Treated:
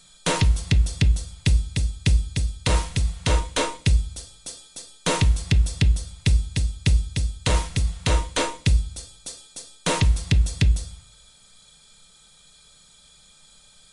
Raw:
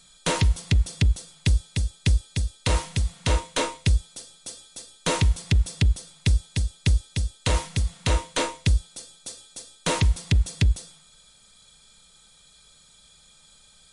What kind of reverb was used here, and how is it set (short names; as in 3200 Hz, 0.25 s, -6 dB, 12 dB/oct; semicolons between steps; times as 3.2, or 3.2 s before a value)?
shoebox room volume 310 m³, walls furnished, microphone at 0.41 m; gain +1.5 dB